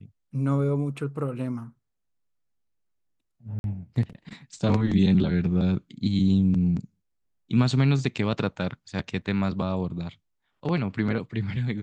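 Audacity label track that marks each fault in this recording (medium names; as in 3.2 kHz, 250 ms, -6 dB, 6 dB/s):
3.590000	3.640000	dropout 51 ms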